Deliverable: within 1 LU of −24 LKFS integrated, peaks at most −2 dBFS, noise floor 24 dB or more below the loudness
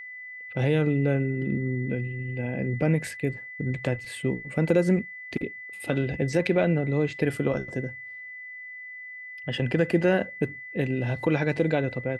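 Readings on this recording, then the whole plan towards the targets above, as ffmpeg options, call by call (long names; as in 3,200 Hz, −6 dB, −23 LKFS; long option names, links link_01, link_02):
interfering tone 2,000 Hz; level of the tone −38 dBFS; integrated loudness −27.0 LKFS; sample peak −10.0 dBFS; target loudness −24.0 LKFS
→ -af "bandreject=frequency=2000:width=30"
-af "volume=3dB"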